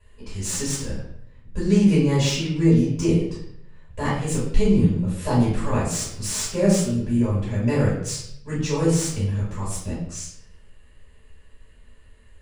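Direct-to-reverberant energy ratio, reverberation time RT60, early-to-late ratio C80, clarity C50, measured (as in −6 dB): −10.0 dB, 0.70 s, 6.0 dB, 2.5 dB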